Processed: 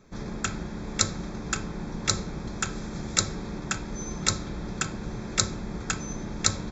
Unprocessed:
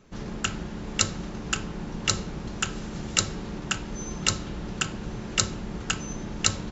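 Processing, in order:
Butterworth band-reject 2,900 Hz, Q 4.9

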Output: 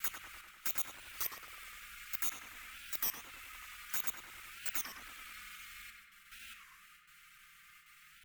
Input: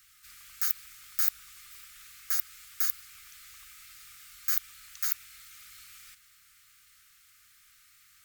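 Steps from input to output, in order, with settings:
slices reordered back to front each 82 ms, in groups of 8
noise reduction from a noise print of the clip's start 6 dB
noise gate with hold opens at −56 dBFS
in parallel at +1 dB: downward compressor, threshold −38 dBFS, peak gain reduction 18 dB
on the sum: high shelf with overshoot 3,500 Hz −6.5 dB, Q 1.5
soft clipping −27 dBFS, distortion −7 dB
flanger swept by the level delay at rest 6.7 ms, full sweep at −34.5 dBFS
tape delay 97 ms, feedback 69%, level −3 dB, low-pass 2,800 Hz
on a send at −17.5 dB: convolution reverb RT60 1.7 s, pre-delay 5 ms
on the sum: wow of a warped record 33 1/3 rpm, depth 250 cents
level +5.5 dB

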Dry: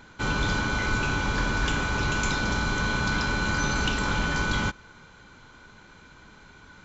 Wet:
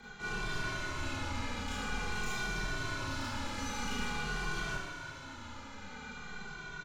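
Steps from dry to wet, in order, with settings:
hum removal 81.66 Hz, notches 37
reversed playback
downward compressor 4 to 1, threshold −35 dBFS, peak gain reduction 12 dB
reversed playback
frequency shifter −20 Hz
soft clipping −38 dBFS, distortion −9 dB
on a send: feedback echo with a high-pass in the loop 120 ms, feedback 82%, level −12 dB
on the sum: four-comb reverb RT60 0.68 s, combs from 26 ms, DRR −7 dB
barber-pole flanger 2.1 ms −0.48 Hz

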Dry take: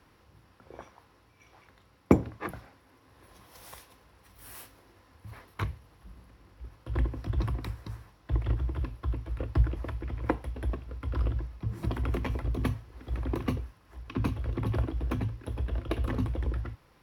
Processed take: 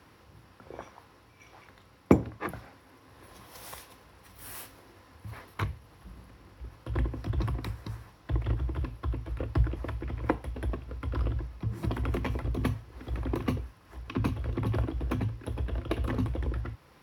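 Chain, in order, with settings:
high-pass filter 57 Hz
in parallel at −3 dB: downward compressor, threshold −44 dBFS, peak gain reduction 27 dB

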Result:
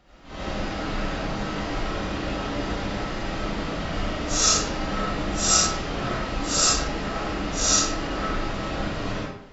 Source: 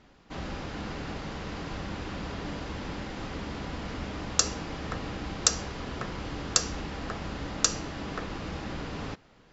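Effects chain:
random phases in long frames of 200 ms
comb and all-pass reverb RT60 0.64 s, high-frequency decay 0.7×, pre-delay 45 ms, DRR −8 dB

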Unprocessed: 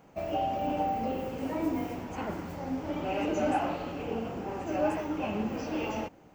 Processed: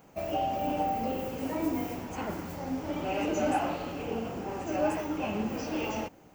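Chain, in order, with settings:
high-shelf EQ 6,200 Hz +10 dB

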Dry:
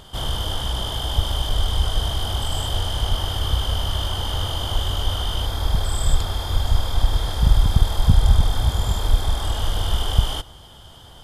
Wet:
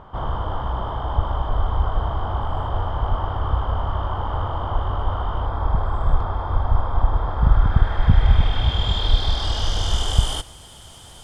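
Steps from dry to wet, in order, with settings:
bit reduction 8 bits
low-pass filter sweep 1,100 Hz → 9,000 Hz, 0:07.29–0:10.37

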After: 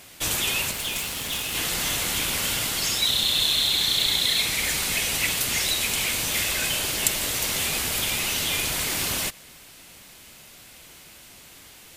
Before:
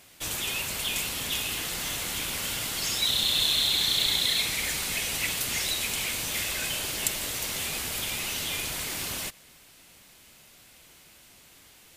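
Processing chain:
in parallel at 0 dB: speech leveller
0:00.71–0:01.55: on the sum: tube saturation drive 20 dB, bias 0.7
level −1.5 dB

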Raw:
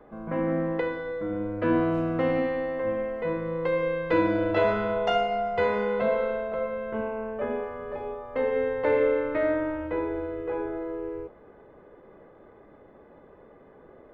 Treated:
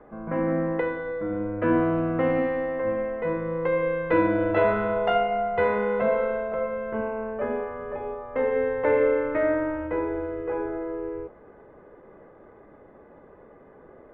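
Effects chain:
Chebyshev low-pass filter 2,000 Hz, order 2
level +2.5 dB

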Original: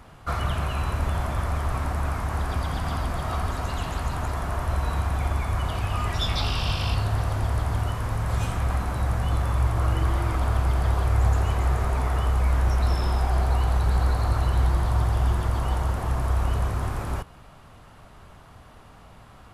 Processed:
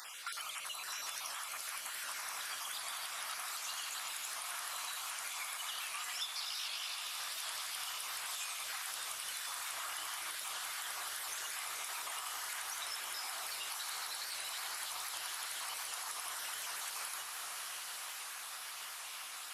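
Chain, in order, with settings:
time-frequency cells dropped at random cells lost 35%
Bessel high-pass filter 2,200 Hz, order 2
high-shelf EQ 2,800 Hz +11 dB
four-comb reverb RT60 3.2 s, DRR 8.5 dB
downward compressor 6 to 1, threshold −49 dBFS, peak gain reduction 25.5 dB
0:00.90–0:01.32: parametric band 5,600 Hz +11 dB 0.23 octaves
feedback delay with all-pass diffusion 1,246 ms, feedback 70%, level −6 dB
wow of a warped record 78 rpm, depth 100 cents
level +7.5 dB

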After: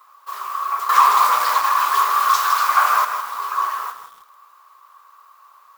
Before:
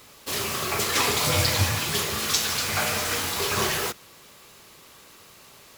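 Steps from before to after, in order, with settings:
flat-topped bell 4,700 Hz −10 dB 2.9 octaves
0:00.89–0:03.05: leveller curve on the samples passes 3
high-pass with resonance 1,100 Hz, resonance Q 9
feedback echo at a low word length 160 ms, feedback 35%, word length 6 bits, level −9.5 dB
level −5 dB

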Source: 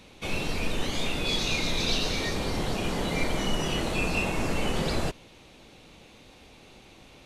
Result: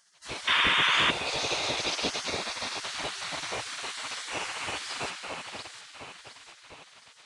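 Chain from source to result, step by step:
0:01.09–0:01.72: low-shelf EQ 500 Hz +11.5 dB
delay that swaps between a low-pass and a high-pass 354 ms, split 1,600 Hz, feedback 69%, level −4 dB
convolution reverb RT60 3.9 s, pre-delay 125 ms, DRR 7 dB
gate on every frequency bin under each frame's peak −20 dB weak
downsampling to 22,050 Hz
0:00.47–0:01.11: sound drawn into the spectrogram noise 910–3,700 Hz −24 dBFS
0:02.27–0:02.80: notch filter 3,000 Hz, Q 10
0:03.83–0:04.64: low-shelf EQ 200 Hz −8.5 dB

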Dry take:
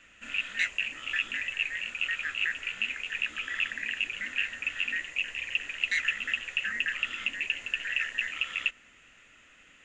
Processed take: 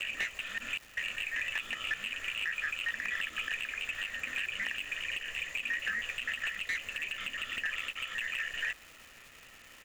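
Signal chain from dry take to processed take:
slices reordered back to front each 194 ms, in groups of 5
comb filter 1.7 ms, depth 32%
downward compressor 6 to 1, threshold −31 dBFS, peak gain reduction 8.5 dB
surface crackle 590 per second −45 dBFS
slew-rate limiting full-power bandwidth 74 Hz
level +1.5 dB

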